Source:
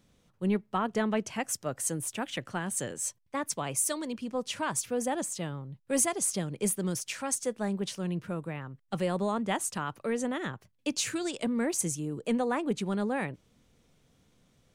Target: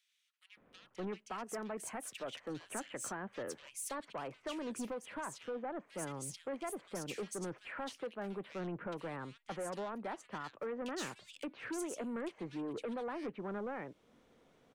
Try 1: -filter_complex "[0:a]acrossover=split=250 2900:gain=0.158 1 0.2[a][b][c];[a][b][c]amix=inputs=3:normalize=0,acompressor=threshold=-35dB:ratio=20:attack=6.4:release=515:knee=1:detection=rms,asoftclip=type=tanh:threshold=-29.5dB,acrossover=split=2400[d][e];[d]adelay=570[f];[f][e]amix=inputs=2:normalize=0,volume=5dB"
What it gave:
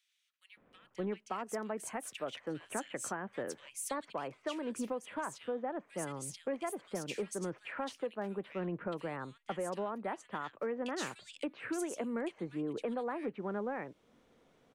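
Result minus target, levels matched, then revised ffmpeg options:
soft clip: distortion -15 dB
-filter_complex "[0:a]acrossover=split=250 2900:gain=0.158 1 0.2[a][b][c];[a][b][c]amix=inputs=3:normalize=0,acompressor=threshold=-35dB:ratio=20:attack=6.4:release=515:knee=1:detection=rms,asoftclip=type=tanh:threshold=-40.5dB,acrossover=split=2400[d][e];[d]adelay=570[f];[f][e]amix=inputs=2:normalize=0,volume=5dB"

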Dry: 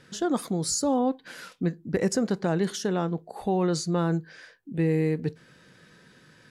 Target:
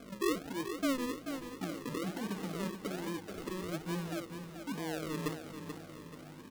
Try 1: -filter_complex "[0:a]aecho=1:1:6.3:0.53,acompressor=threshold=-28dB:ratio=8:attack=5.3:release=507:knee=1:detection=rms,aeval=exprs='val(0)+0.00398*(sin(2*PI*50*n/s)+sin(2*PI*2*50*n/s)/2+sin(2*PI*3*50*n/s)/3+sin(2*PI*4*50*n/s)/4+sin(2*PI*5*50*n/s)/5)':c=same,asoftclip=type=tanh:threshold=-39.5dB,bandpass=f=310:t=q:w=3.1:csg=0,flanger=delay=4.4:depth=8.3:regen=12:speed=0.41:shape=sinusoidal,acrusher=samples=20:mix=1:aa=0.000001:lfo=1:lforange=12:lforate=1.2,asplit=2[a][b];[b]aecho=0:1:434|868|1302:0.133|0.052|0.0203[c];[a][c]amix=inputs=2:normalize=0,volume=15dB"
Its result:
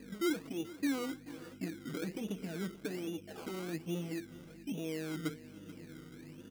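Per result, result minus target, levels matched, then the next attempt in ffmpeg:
decimation with a swept rate: distortion -11 dB; compressor: peak gain reduction +6.5 dB; echo-to-direct -9 dB
-filter_complex "[0:a]aecho=1:1:6.3:0.53,acompressor=threshold=-28dB:ratio=8:attack=5.3:release=507:knee=1:detection=rms,aeval=exprs='val(0)+0.00398*(sin(2*PI*50*n/s)+sin(2*PI*2*50*n/s)/2+sin(2*PI*3*50*n/s)/3+sin(2*PI*4*50*n/s)/4+sin(2*PI*5*50*n/s)/5)':c=same,asoftclip=type=tanh:threshold=-39.5dB,bandpass=f=310:t=q:w=3.1:csg=0,flanger=delay=4.4:depth=8.3:regen=12:speed=0.41:shape=sinusoidal,acrusher=samples=46:mix=1:aa=0.000001:lfo=1:lforange=27.6:lforate=1.2,asplit=2[a][b];[b]aecho=0:1:434|868|1302:0.133|0.052|0.0203[c];[a][c]amix=inputs=2:normalize=0,volume=15dB"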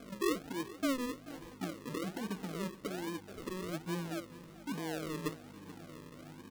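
compressor: peak gain reduction +6.5 dB; echo-to-direct -9 dB
-filter_complex "[0:a]aecho=1:1:6.3:0.53,acompressor=threshold=-20.5dB:ratio=8:attack=5.3:release=507:knee=1:detection=rms,aeval=exprs='val(0)+0.00398*(sin(2*PI*50*n/s)+sin(2*PI*2*50*n/s)/2+sin(2*PI*3*50*n/s)/3+sin(2*PI*4*50*n/s)/4+sin(2*PI*5*50*n/s)/5)':c=same,asoftclip=type=tanh:threshold=-39.5dB,bandpass=f=310:t=q:w=3.1:csg=0,flanger=delay=4.4:depth=8.3:regen=12:speed=0.41:shape=sinusoidal,acrusher=samples=46:mix=1:aa=0.000001:lfo=1:lforange=27.6:lforate=1.2,asplit=2[a][b];[b]aecho=0:1:434|868|1302:0.133|0.052|0.0203[c];[a][c]amix=inputs=2:normalize=0,volume=15dB"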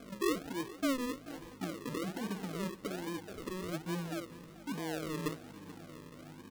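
echo-to-direct -9 dB
-filter_complex "[0:a]aecho=1:1:6.3:0.53,acompressor=threshold=-20.5dB:ratio=8:attack=5.3:release=507:knee=1:detection=rms,aeval=exprs='val(0)+0.00398*(sin(2*PI*50*n/s)+sin(2*PI*2*50*n/s)/2+sin(2*PI*3*50*n/s)/3+sin(2*PI*4*50*n/s)/4+sin(2*PI*5*50*n/s)/5)':c=same,asoftclip=type=tanh:threshold=-39.5dB,bandpass=f=310:t=q:w=3.1:csg=0,flanger=delay=4.4:depth=8.3:regen=12:speed=0.41:shape=sinusoidal,acrusher=samples=46:mix=1:aa=0.000001:lfo=1:lforange=27.6:lforate=1.2,asplit=2[a][b];[b]aecho=0:1:434|868|1302|1736:0.376|0.147|0.0572|0.0223[c];[a][c]amix=inputs=2:normalize=0,volume=15dB"

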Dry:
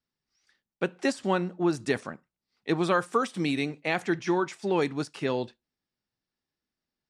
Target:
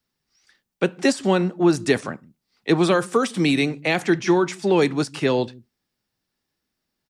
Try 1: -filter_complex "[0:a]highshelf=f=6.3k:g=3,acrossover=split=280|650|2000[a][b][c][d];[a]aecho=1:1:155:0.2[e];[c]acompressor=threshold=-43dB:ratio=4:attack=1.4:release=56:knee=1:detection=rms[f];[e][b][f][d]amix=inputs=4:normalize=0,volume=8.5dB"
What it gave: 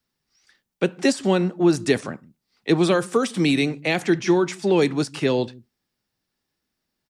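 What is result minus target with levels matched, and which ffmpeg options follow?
compressor: peak gain reduction +6 dB
-filter_complex "[0:a]highshelf=f=6.3k:g=3,acrossover=split=280|650|2000[a][b][c][d];[a]aecho=1:1:155:0.2[e];[c]acompressor=threshold=-35dB:ratio=4:attack=1.4:release=56:knee=1:detection=rms[f];[e][b][f][d]amix=inputs=4:normalize=0,volume=8.5dB"

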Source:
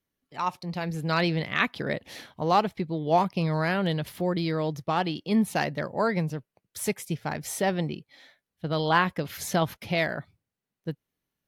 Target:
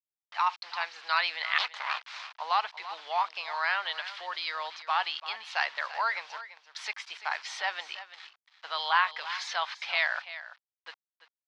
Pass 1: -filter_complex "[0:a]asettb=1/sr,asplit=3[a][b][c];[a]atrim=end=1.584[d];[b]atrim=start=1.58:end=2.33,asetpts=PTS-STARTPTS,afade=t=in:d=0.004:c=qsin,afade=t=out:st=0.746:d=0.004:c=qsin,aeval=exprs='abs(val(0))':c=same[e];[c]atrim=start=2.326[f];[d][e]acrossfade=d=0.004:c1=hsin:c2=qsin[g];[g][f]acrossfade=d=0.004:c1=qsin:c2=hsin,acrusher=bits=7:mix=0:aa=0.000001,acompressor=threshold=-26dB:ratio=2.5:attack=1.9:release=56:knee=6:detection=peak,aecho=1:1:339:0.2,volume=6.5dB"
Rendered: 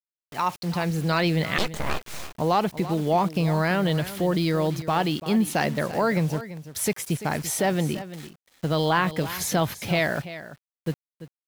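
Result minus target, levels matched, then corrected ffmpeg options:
2000 Hz band -6.0 dB
-filter_complex "[0:a]asettb=1/sr,asplit=3[a][b][c];[a]atrim=end=1.584[d];[b]atrim=start=1.58:end=2.33,asetpts=PTS-STARTPTS,afade=t=in:d=0.004:c=qsin,afade=t=out:st=0.746:d=0.004:c=qsin,aeval=exprs='abs(val(0))':c=same[e];[c]atrim=start=2.326[f];[d][e]acrossfade=d=0.004:c1=hsin:c2=qsin[g];[g][f]acrossfade=d=0.004:c1=qsin:c2=hsin,acrusher=bits=7:mix=0:aa=0.000001,acompressor=threshold=-26dB:ratio=2.5:attack=1.9:release=56:knee=6:detection=peak,asuperpass=centerf=2100:order=8:qfactor=0.53,aecho=1:1:339:0.2,volume=6.5dB"

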